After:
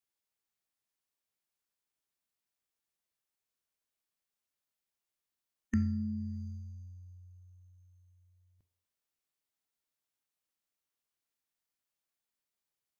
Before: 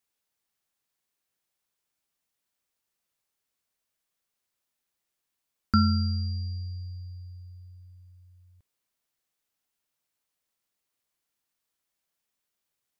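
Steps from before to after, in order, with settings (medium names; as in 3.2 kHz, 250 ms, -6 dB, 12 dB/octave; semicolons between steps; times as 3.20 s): two-slope reverb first 0.63 s, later 1.6 s, from -25 dB, DRR 14.5 dB; formant shift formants +5 st; trim -7.5 dB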